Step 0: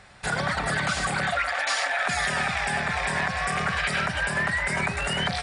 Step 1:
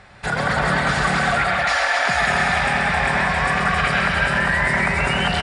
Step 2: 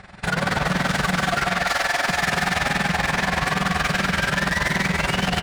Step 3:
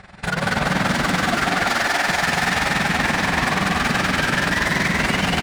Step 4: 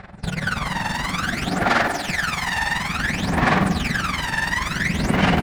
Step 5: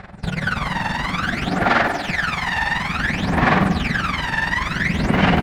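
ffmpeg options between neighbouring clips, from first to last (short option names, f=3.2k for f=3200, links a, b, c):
-af "lowpass=f=3.2k:p=1,acontrast=31,aecho=1:1:131|181|267|378:0.501|0.447|0.631|0.422"
-af "equalizer=f=180:t=o:w=0.38:g=8,asoftclip=type=hard:threshold=-22dB,tremolo=f=21:d=0.75,volume=5dB"
-filter_complex "[0:a]asplit=9[a][b][c][d][e][f][g][h][i];[b]adelay=198,afreqshift=52,volume=-3.5dB[j];[c]adelay=396,afreqshift=104,volume=-8.5dB[k];[d]adelay=594,afreqshift=156,volume=-13.6dB[l];[e]adelay=792,afreqshift=208,volume=-18.6dB[m];[f]adelay=990,afreqshift=260,volume=-23.6dB[n];[g]adelay=1188,afreqshift=312,volume=-28.7dB[o];[h]adelay=1386,afreqshift=364,volume=-33.7dB[p];[i]adelay=1584,afreqshift=416,volume=-38.8dB[q];[a][j][k][l][m][n][o][p][q]amix=inputs=9:normalize=0"
-af "aphaser=in_gain=1:out_gain=1:delay=1.1:decay=0.74:speed=0.57:type=sinusoidal,volume=-7dB"
-filter_complex "[0:a]acrossover=split=4400[a][b];[b]acompressor=threshold=-47dB:ratio=4:attack=1:release=60[c];[a][c]amix=inputs=2:normalize=0,volume=2dB"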